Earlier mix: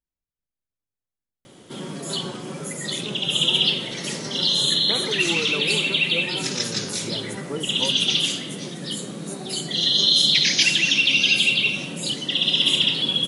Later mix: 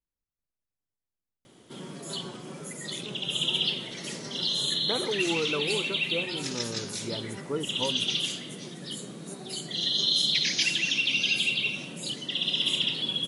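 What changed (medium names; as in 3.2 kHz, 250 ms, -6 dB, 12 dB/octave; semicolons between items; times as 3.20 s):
background -6.5 dB; reverb: off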